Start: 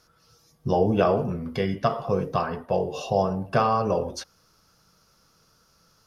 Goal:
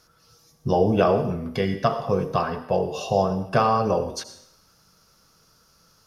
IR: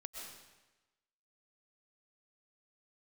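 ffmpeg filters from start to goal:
-filter_complex "[0:a]asplit=2[link_01][link_02];[1:a]atrim=start_sample=2205,asetrate=66150,aresample=44100,highshelf=frequency=3700:gain=10[link_03];[link_02][link_03]afir=irnorm=-1:irlink=0,volume=-4dB[link_04];[link_01][link_04]amix=inputs=2:normalize=0"

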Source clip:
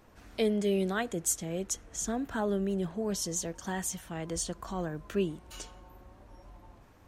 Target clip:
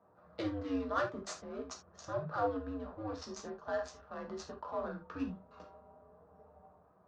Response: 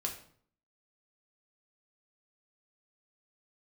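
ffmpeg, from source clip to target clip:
-filter_complex "[0:a]adynamicsmooth=sensitivity=7.5:basefreq=1000,afreqshift=-120,highpass=200,equalizer=frequency=240:width_type=q:width=4:gain=-7,equalizer=frequency=340:width_type=q:width=4:gain=-8,equalizer=frequency=650:width_type=q:width=4:gain=6,equalizer=frequency=1200:width_type=q:width=4:gain=7,equalizer=frequency=2200:width_type=q:width=4:gain=-8,equalizer=frequency=3100:width_type=q:width=4:gain=-9,lowpass=frequency=5200:width=0.5412,lowpass=frequency=5200:width=1.3066[link_01];[1:a]atrim=start_sample=2205,atrim=end_sample=3969[link_02];[link_01][link_02]afir=irnorm=-1:irlink=0,volume=-2.5dB"

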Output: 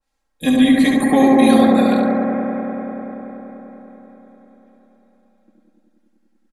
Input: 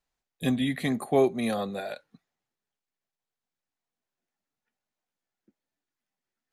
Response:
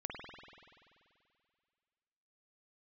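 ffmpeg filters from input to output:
-filter_complex "[0:a]aecho=1:1:3.7:0.91,aecho=1:1:70|140|210|280:0.501|0.14|0.0393|0.011[link_01];[1:a]atrim=start_sample=2205,asetrate=22050,aresample=44100[link_02];[link_01][link_02]afir=irnorm=-1:irlink=0,adynamicequalizer=threshold=0.0126:dfrequency=1800:dqfactor=0.7:tfrequency=1800:tqfactor=0.7:attack=5:release=100:ratio=0.375:range=2:mode=boostabove:tftype=highshelf,volume=5.5dB"

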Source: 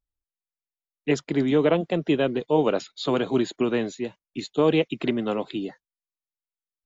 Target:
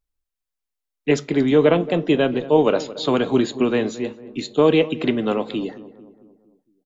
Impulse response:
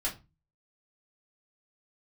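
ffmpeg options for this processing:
-filter_complex "[0:a]asplit=2[link_01][link_02];[link_02]adelay=225,lowpass=frequency=1200:poles=1,volume=-16dB,asplit=2[link_03][link_04];[link_04]adelay=225,lowpass=frequency=1200:poles=1,volume=0.54,asplit=2[link_05][link_06];[link_06]adelay=225,lowpass=frequency=1200:poles=1,volume=0.54,asplit=2[link_07][link_08];[link_08]adelay=225,lowpass=frequency=1200:poles=1,volume=0.54,asplit=2[link_09][link_10];[link_10]adelay=225,lowpass=frequency=1200:poles=1,volume=0.54[link_11];[link_01][link_03][link_05][link_07][link_09][link_11]amix=inputs=6:normalize=0,asplit=2[link_12][link_13];[1:a]atrim=start_sample=2205,asetrate=33075,aresample=44100[link_14];[link_13][link_14]afir=irnorm=-1:irlink=0,volume=-18dB[link_15];[link_12][link_15]amix=inputs=2:normalize=0,volume=3.5dB"

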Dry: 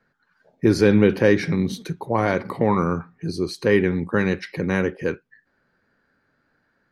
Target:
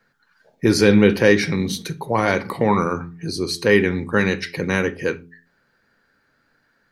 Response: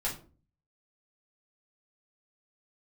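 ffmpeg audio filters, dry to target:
-filter_complex "[0:a]highshelf=frequency=2100:gain=9,bandreject=frequency=85.35:width_type=h:width=4,bandreject=frequency=170.7:width_type=h:width=4,bandreject=frequency=256.05:width_type=h:width=4,bandreject=frequency=341.4:width_type=h:width=4,bandreject=frequency=426.75:width_type=h:width=4,asplit=2[link_01][link_02];[1:a]atrim=start_sample=2205,atrim=end_sample=6174[link_03];[link_02][link_03]afir=irnorm=-1:irlink=0,volume=-16dB[link_04];[link_01][link_04]amix=inputs=2:normalize=0"

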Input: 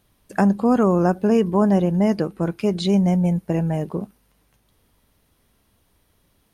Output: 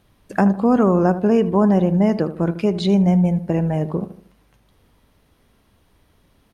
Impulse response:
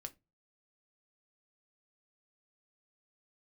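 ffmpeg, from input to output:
-filter_complex "[0:a]highshelf=frequency=6100:gain=-10.5,asplit=2[link_01][link_02];[link_02]acompressor=threshold=-29dB:ratio=6,volume=-1dB[link_03];[link_01][link_03]amix=inputs=2:normalize=0,asplit=2[link_04][link_05];[link_05]adelay=77,lowpass=frequency=1400:poles=1,volume=-12dB,asplit=2[link_06][link_07];[link_07]adelay=77,lowpass=frequency=1400:poles=1,volume=0.43,asplit=2[link_08][link_09];[link_09]adelay=77,lowpass=frequency=1400:poles=1,volume=0.43,asplit=2[link_10][link_11];[link_11]adelay=77,lowpass=frequency=1400:poles=1,volume=0.43[link_12];[link_04][link_06][link_08][link_10][link_12]amix=inputs=5:normalize=0"

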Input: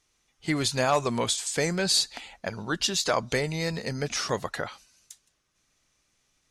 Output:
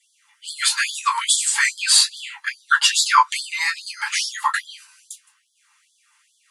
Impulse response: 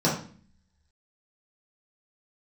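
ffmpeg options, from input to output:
-filter_complex "[1:a]atrim=start_sample=2205,atrim=end_sample=3528,asetrate=79380,aresample=44100[link_01];[0:a][link_01]afir=irnorm=-1:irlink=0,afftfilt=real='re*gte(b*sr/1024,780*pow(3200/780,0.5+0.5*sin(2*PI*2.4*pts/sr)))':imag='im*gte(b*sr/1024,780*pow(3200/780,0.5+0.5*sin(2*PI*2.4*pts/sr)))':win_size=1024:overlap=0.75,volume=5.5dB"

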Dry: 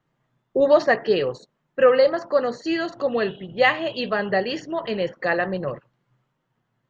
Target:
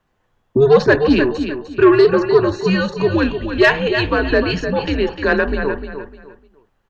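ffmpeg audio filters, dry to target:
ffmpeg -i in.wav -af "afreqshift=-140,aecho=1:1:302|604|906:0.355|0.0958|0.0259,acontrast=79" out.wav

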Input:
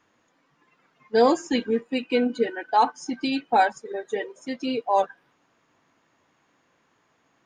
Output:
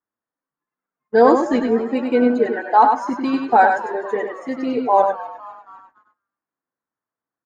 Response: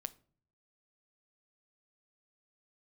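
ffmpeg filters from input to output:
-filter_complex "[0:a]highshelf=frequency=2100:width_type=q:width=1.5:gain=-10,bandreject=frequency=50:width_type=h:width=6,bandreject=frequency=100:width_type=h:width=6,bandreject=frequency=150:width_type=h:width=6,asplit=6[link_01][link_02][link_03][link_04][link_05][link_06];[link_02]adelay=252,afreqshift=120,volume=-17.5dB[link_07];[link_03]adelay=504,afreqshift=240,volume=-23dB[link_08];[link_04]adelay=756,afreqshift=360,volume=-28.5dB[link_09];[link_05]adelay=1008,afreqshift=480,volume=-34dB[link_10];[link_06]adelay=1260,afreqshift=600,volume=-39.6dB[link_11];[link_01][link_07][link_08][link_09][link_10][link_11]amix=inputs=6:normalize=0,agate=range=-31dB:threshold=-49dB:ratio=16:detection=peak,asplit=2[link_12][link_13];[1:a]atrim=start_sample=2205,asetrate=88200,aresample=44100,adelay=98[link_14];[link_13][link_14]afir=irnorm=-1:irlink=0,volume=3.5dB[link_15];[link_12][link_15]amix=inputs=2:normalize=0,volume=5dB"

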